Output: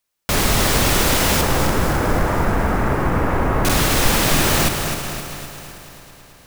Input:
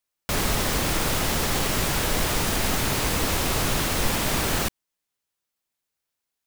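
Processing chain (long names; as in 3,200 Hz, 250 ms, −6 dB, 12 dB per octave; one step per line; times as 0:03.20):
0:01.41–0:03.65: low-pass filter 1,700 Hz 24 dB per octave
echo machine with several playback heads 109 ms, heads first and third, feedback 73%, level −15.5 dB
regular buffer underruns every 0.68 s, samples 2,048, repeat, from 0:00.92
feedback echo at a low word length 259 ms, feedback 55%, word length 7 bits, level −7 dB
level +6.5 dB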